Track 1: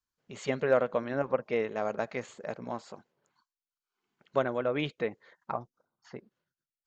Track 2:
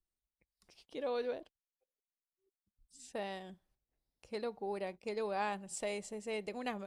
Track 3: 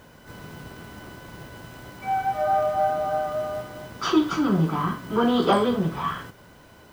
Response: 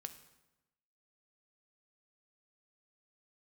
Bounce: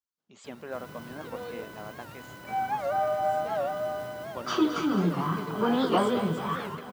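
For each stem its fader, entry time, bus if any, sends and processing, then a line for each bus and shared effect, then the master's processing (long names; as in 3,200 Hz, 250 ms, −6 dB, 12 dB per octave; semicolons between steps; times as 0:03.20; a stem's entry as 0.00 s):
−4.0 dB, 0.00 s, no send, no echo send, octave-band graphic EQ 125/500/2,000 Hz −11/−10/−9 dB
−3.5 dB, 0.30 s, no send, no echo send, no processing
−4.5 dB, 0.45 s, no send, echo send −10.5 dB, high-shelf EQ 9,000 Hz +8 dB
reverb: not used
echo: repeating echo 218 ms, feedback 59%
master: high-pass filter 99 Hz 12 dB per octave; high-shelf EQ 5,000 Hz −4 dB; wow of a warped record 78 rpm, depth 160 cents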